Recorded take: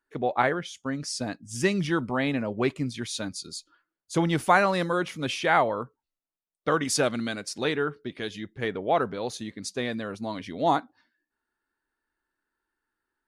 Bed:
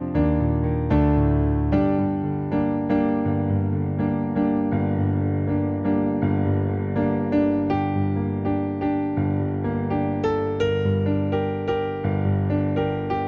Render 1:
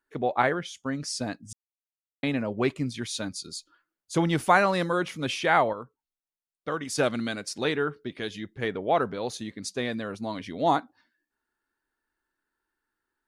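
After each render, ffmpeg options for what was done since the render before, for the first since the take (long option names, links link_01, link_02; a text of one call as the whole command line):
ffmpeg -i in.wav -filter_complex "[0:a]asplit=5[link_01][link_02][link_03][link_04][link_05];[link_01]atrim=end=1.53,asetpts=PTS-STARTPTS,afade=type=out:start_time=1.526:duration=0.004:curve=hsin[link_06];[link_02]atrim=start=1.53:end=2.23,asetpts=PTS-STARTPTS,volume=0[link_07];[link_03]atrim=start=2.23:end=5.732,asetpts=PTS-STARTPTS,afade=type=in:duration=0.004:curve=hsin[link_08];[link_04]atrim=start=5.728:end=6.982,asetpts=PTS-STARTPTS,volume=-6.5dB[link_09];[link_05]atrim=start=6.978[link_10];[link_06][link_07][link_08]concat=n=3:v=0:a=1[link_11];[link_11][link_09]acrossfade=duration=0.004:curve1=hsin:curve2=hsin[link_12];[link_12][link_10]acrossfade=duration=0.004:curve1=hsin:curve2=hsin" out.wav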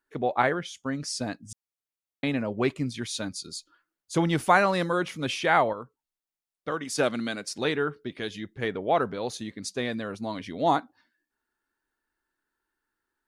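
ffmpeg -i in.wav -filter_complex "[0:a]asettb=1/sr,asplit=3[link_01][link_02][link_03];[link_01]atrim=end=6.714[link_04];[link_02]atrim=start=6.71:end=7.5,asetpts=PTS-STARTPTS,afade=type=in:duration=0.004:curve=qsin,afade=type=out:start_time=0.786:duration=0.004:curve=qsin,highpass=140[link_05];[link_03]atrim=start=7.496[link_06];[link_04][link_05]acrossfade=duration=0.004:curve1=hsin:curve2=qsin[link_07];[link_07][link_06]acrossfade=duration=0.004:curve1=qsin:curve2=hsin" out.wav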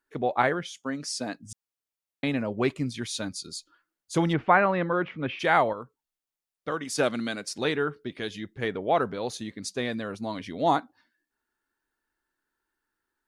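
ffmpeg -i in.wav -filter_complex "[0:a]asettb=1/sr,asplit=3[link_01][link_02][link_03];[link_01]atrim=end=0.674[link_04];[link_02]atrim=start=0.67:end=1.37,asetpts=PTS-STARTPTS,afade=type=in:duration=0.004:curve=qsin,afade=type=out:start_time=0.696:duration=0.004:curve=qsin,highpass=200[link_05];[link_03]atrim=start=1.366[link_06];[link_04][link_05]acrossfade=duration=0.004:curve1=hsin:curve2=qsin[link_07];[link_07][link_06]acrossfade=duration=0.004:curve1=qsin:curve2=hsin,asplit=3[link_08][link_09][link_10];[link_08]afade=type=out:start_time=4.32:duration=0.02[link_11];[link_09]lowpass=frequency=2600:width=0.5412,lowpass=frequency=2600:width=1.3066,afade=type=in:start_time=4.32:duration=0.02,afade=type=out:start_time=5.39:duration=0.02[link_12];[link_10]afade=type=in:start_time=5.39:duration=0.02[link_13];[link_11][link_12][link_13]amix=inputs=3:normalize=0" out.wav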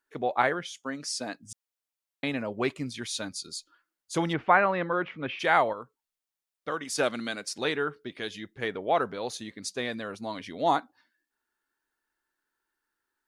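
ffmpeg -i in.wav -af "lowshelf=frequency=310:gain=-7.5" out.wav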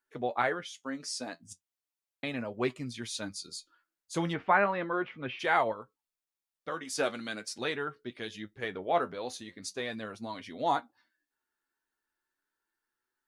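ffmpeg -i in.wav -af "flanger=delay=8:depth=3.9:regen=50:speed=0.38:shape=sinusoidal" out.wav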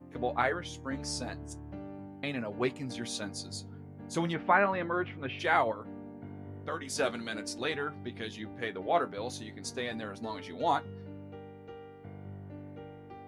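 ffmpeg -i in.wav -i bed.wav -filter_complex "[1:a]volume=-23.5dB[link_01];[0:a][link_01]amix=inputs=2:normalize=0" out.wav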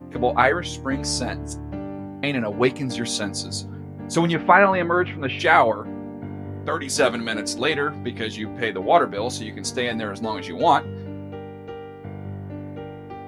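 ffmpeg -i in.wav -af "volume=11.5dB,alimiter=limit=-2dB:level=0:latency=1" out.wav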